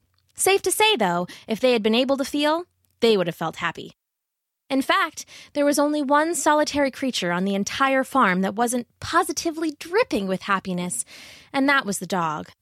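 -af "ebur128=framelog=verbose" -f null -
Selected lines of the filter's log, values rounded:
Integrated loudness:
  I:         -22.1 LUFS
  Threshold: -32.4 LUFS
Loudness range:
  LRA:         3.3 LU
  Threshold: -42.7 LUFS
  LRA low:   -24.3 LUFS
  LRA high:  -21.0 LUFS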